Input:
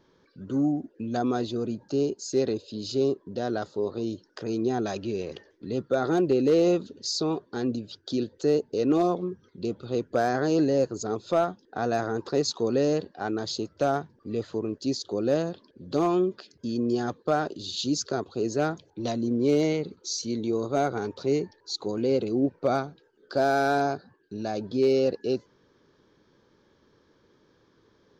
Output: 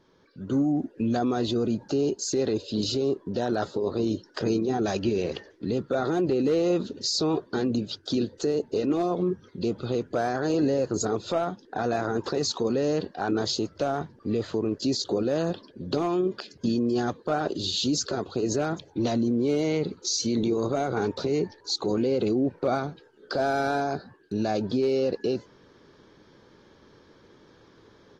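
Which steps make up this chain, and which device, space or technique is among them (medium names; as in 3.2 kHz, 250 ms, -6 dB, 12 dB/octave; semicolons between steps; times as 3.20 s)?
low-bitrate web radio (level rider gain up to 7.5 dB; peak limiter -17.5 dBFS, peak gain reduction 10.5 dB; AAC 32 kbps 48 kHz)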